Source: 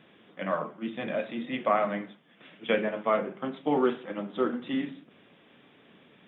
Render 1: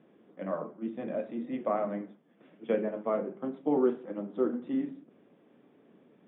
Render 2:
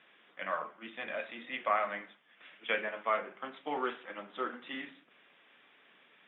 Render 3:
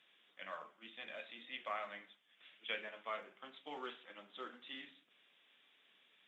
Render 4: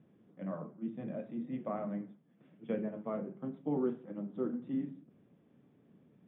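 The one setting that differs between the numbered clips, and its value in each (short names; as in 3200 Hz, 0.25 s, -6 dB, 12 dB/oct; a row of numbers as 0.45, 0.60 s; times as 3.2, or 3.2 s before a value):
band-pass, frequency: 330, 1900, 7000, 120 Hz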